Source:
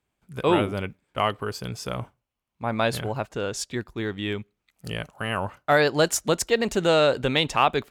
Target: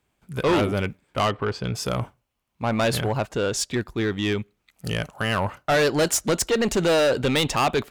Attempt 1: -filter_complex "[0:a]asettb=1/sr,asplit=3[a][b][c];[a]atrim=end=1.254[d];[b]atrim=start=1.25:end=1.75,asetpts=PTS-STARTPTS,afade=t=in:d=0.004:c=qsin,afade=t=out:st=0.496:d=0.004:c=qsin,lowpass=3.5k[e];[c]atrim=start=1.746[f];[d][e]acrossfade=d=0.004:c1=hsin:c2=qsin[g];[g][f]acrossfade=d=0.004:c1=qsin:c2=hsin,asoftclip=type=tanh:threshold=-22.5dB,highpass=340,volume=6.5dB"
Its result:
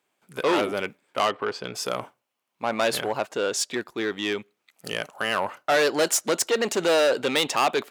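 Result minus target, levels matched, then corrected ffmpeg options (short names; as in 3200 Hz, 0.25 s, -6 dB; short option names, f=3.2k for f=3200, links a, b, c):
250 Hz band -4.0 dB
-filter_complex "[0:a]asettb=1/sr,asplit=3[a][b][c];[a]atrim=end=1.254[d];[b]atrim=start=1.25:end=1.75,asetpts=PTS-STARTPTS,afade=t=in:d=0.004:c=qsin,afade=t=out:st=0.496:d=0.004:c=qsin,lowpass=3.5k[e];[c]atrim=start=1.746[f];[d][e]acrossfade=d=0.004:c1=hsin:c2=qsin[g];[g][f]acrossfade=d=0.004:c1=qsin:c2=hsin,asoftclip=type=tanh:threshold=-22.5dB,volume=6.5dB"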